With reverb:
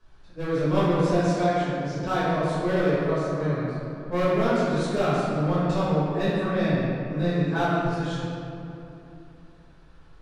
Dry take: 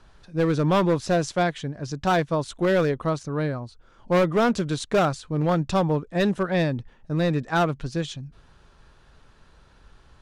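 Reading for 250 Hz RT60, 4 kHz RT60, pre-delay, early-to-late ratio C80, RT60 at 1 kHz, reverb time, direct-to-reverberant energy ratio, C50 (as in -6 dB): 3.6 s, 1.6 s, 5 ms, -2.0 dB, 2.7 s, 2.9 s, -12.0 dB, -4.5 dB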